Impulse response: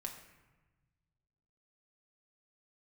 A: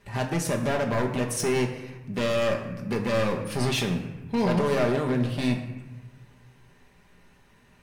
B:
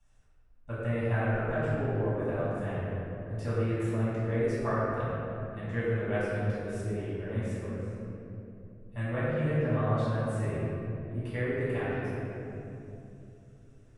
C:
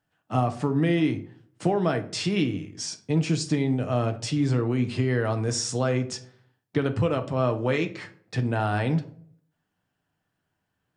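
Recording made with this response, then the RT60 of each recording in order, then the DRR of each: A; 1.2, 2.9, 0.60 s; 1.0, -13.5, 6.0 dB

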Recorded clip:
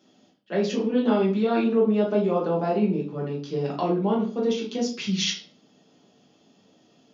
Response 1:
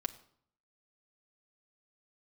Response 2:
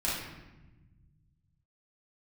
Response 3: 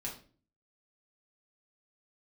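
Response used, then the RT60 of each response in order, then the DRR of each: 3; not exponential, 1.1 s, 0.40 s; 2.0, -8.0, -4.0 dB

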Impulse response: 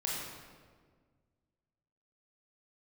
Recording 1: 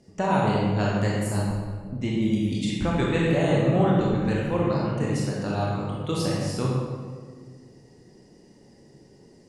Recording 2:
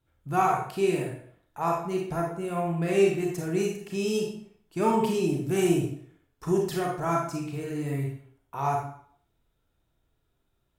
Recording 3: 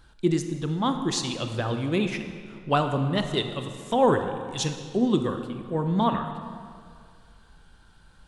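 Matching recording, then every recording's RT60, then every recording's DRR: 1; 1.7, 0.60, 2.2 s; -4.5, -1.0, 6.5 dB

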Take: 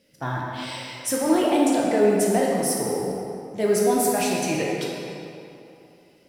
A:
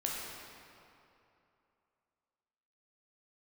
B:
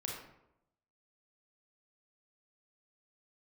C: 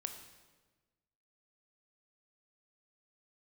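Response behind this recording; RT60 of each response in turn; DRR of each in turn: A; 2.8, 0.85, 1.3 s; -3.5, -2.0, 6.0 dB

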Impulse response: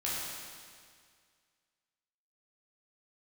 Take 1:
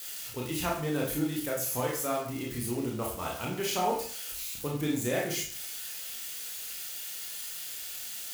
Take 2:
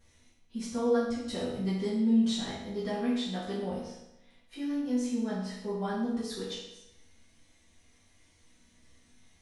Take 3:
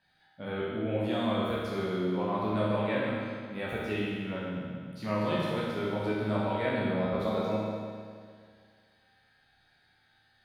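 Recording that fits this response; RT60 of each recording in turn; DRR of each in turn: 3; 0.50, 0.90, 2.0 s; -3.0, -10.5, -8.0 dB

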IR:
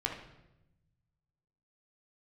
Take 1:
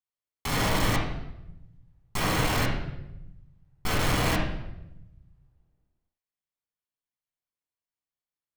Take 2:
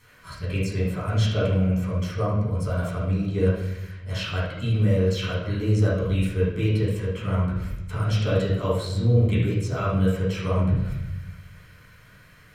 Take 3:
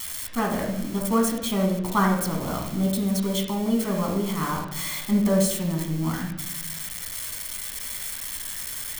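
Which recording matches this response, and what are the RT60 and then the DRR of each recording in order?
3; 0.95, 0.95, 0.95 s; -4.5, -11.0, -0.5 dB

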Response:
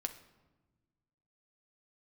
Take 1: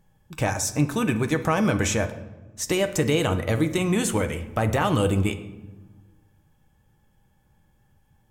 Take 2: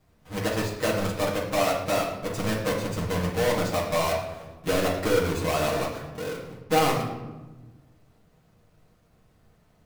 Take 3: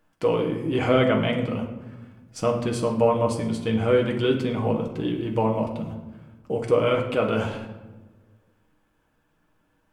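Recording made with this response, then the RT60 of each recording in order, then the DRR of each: 1; 1.2, 1.2, 1.2 s; 7.0, -6.0, 0.5 dB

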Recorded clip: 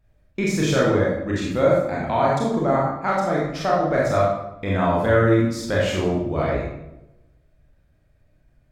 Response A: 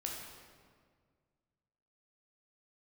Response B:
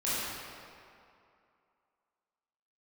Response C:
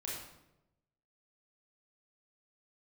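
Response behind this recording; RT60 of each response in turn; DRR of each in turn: C; 1.8, 2.5, 0.90 s; -1.5, -11.5, -5.0 dB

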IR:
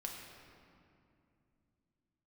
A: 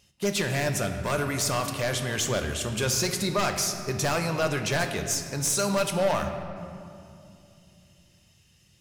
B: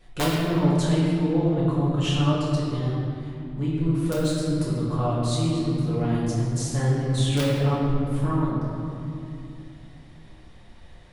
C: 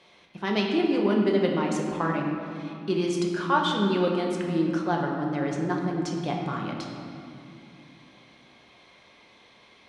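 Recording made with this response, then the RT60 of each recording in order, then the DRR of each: C; 2.6, 2.6, 2.6 s; 5.0, -8.0, -0.5 dB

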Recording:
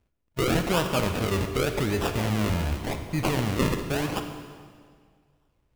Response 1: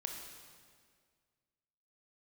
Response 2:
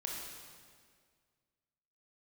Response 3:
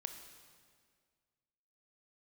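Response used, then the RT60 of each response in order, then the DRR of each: 3; 1.9, 1.9, 1.9 s; 2.0, -2.0, 6.0 dB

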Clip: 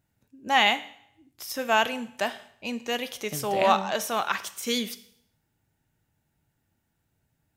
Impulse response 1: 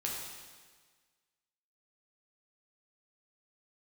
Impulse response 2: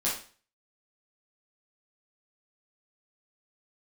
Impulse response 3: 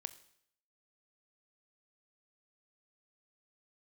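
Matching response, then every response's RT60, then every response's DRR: 3; 1.5, 0.40, 0.70 s; -3.5, -8.0, 13.0 dB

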